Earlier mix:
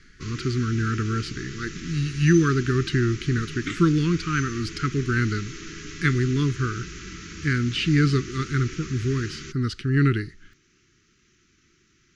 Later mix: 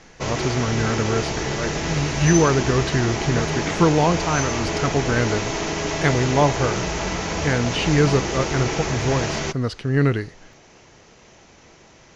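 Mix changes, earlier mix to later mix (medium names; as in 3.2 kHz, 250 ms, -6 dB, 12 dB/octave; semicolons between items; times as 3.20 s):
background +11.0 dB; master: remove elliptic band-stop 370–1300 Hz, stop band 50 dB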